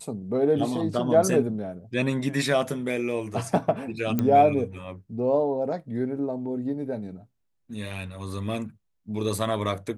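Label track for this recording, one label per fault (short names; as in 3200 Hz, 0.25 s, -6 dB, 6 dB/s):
4.190000	4.190000	pop -12 dBFS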